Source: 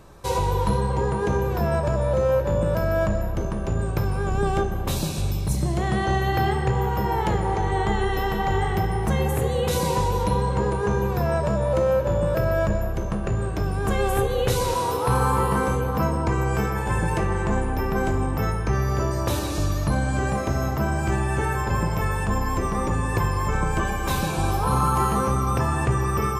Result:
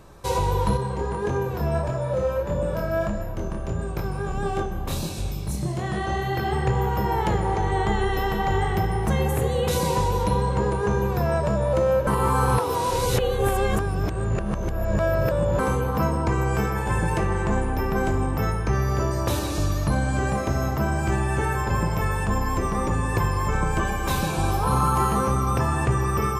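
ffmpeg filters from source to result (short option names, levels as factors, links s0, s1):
-filter_complex "[0:a]asettb=1/sr,asplit=3[s0][s1][s2];[s0]atrim=end=0.774[s3];[s1]atrim=start=0.77:end=6.53,asetpts=PTS-STARTPTS,afade=t=in:d=0.004:c=qsin,afade=t=out:st=5.756:d=0.004:c=qsin,flanger=delay=22.5:depth=5:speed=1.6[s4];[s2]atrim=start=6.526[s5];[s3][s4]acrossfade=d=0.004:c1=hsin:c2=qsin[s6];[s6][s5]acrossfade=d=0.004:c1=qsin:c2=hsin,asplit=3[s7][s8][s9];[s7]atrim=end=12.072[s10];[s8]atrim=start=12.068:end=15.592,asetpts=PTS-STARTPTS,areverse[s11];[s9]atrim=start=15.588[s12];[s10][s11]acrossfade=d=0.004:c1=hsin:c2=hsin[s13];[s13][s12]acrossfade=d=0.004:c1=hsin:c2=hsin"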